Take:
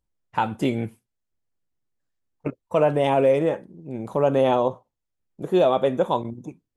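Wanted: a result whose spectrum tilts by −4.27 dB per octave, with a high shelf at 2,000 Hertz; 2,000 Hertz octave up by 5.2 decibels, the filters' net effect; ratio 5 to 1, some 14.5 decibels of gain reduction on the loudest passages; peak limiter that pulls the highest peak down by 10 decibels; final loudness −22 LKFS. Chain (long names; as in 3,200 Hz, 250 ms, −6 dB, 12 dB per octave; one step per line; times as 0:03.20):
high-shelf EQ 2,000 Hz −3.5 dB
parametric band 2,000 Hz +9 dB
downward compressor 5 to 1, threshold −31 dBFS
level +15 dB
brickwall limiter −9 dBFS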